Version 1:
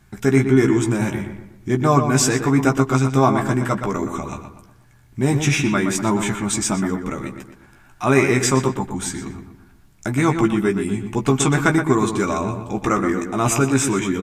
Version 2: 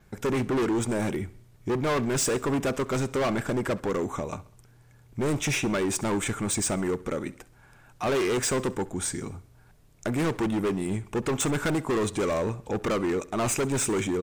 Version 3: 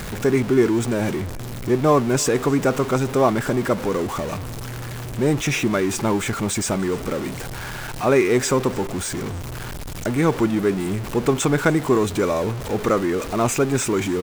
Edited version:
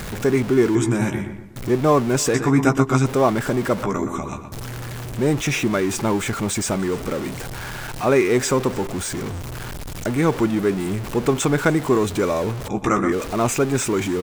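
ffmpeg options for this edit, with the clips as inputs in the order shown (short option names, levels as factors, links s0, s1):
-filter_complex "[0:a]asplit=4[s0][s1][s2][s3];[2:a]asplit=5[s4][s5][s6][s7][s8];[s4]atrim=end=0.752[s9];[s0]atrim=start=0.748:end=1.562[s10];[s5]atrim=start=1.558:end=2.342[s11];[s1]atrim=start=2.338:end=3.062[s12];[s6]atrim=start=3.058:end=3.832[s13];[s2]atrim=start=3.828:end=4.522[s14];[s7]atrim=start=4.518:end=12.682[s15];[s3]atrim=start=12.678:end=13.122[s16];[s8]atrim=start=13.118[s17];[s9][s10]acrossfade=d=0.004:c1=hsin:c2=hsin[s18];[s18][s11]acrossfade=d=0.004:c1=hsin:c2=hsin[s19];[s19][s12]acrossfade=d=0.004:c1=hsin:c2=hsin[s20];[s20][s13]acrossfade=d=0.004:c1=hsin:c2=hsin[s21];[s21][s14]acrossfade=d=0.004:c1=hsin:c2=hsin[s22];[s22][s15]acrossfade=d=0.004:c1=hsin:c2=hsin[s23];[s23][s16]acrossfade=d=0.004:c1=hsin:c2=hsin[s24];[s24][s17]acrossfade=d=0.004:c1=hsin:c2=hsin"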